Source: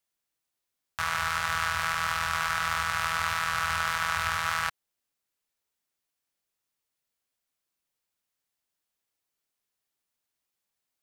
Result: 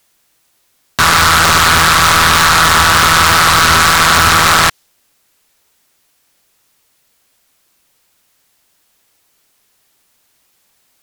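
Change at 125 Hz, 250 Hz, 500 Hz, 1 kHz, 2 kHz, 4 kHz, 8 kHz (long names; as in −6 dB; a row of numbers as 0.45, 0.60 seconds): +23.5 dB, can't be measured, +23.5 dB, +19.5 dB, +18.0 dB, +23.0 dB, +24.5 dB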